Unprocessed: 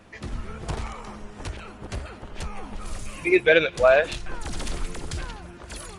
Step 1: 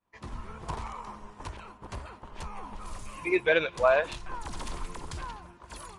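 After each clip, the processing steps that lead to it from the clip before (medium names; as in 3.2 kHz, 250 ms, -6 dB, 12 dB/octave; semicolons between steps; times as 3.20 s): expander -37 dBFS; peaking EQ 1 kHz +13 dB 0.41 oct; trim -7.5 dB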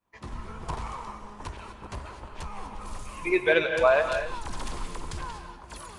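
gated-style reverb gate 270 ms rising, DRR 6.5 dB; trim +1.5 dB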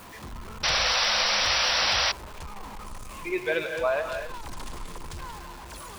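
jump at every zero crossing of -33 dBFS; painted sound noise, 0.63–2.12 s, 480–5900 Hz -18 dBFS; trim -6 dB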